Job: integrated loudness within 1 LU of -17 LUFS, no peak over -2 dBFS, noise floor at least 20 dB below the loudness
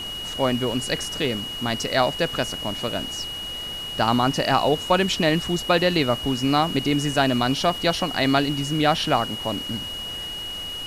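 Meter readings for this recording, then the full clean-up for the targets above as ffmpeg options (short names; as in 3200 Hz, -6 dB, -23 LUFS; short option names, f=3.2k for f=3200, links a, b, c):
steady tone 2900 Hz; tone level -30 dBFS; noise floor -32 dBFS; noise floor target -43 dBFS; loudness -23.0 LUFS; peak -6.0 dBFS; loudness target -17.0 LUFS
-> -af "bandreject=f=2.9k:w=30"
-af "afftdn=nr=11:nf=-32"
-af "volume=6dB,alimiter=limit=-2dB:level=0:latency=1"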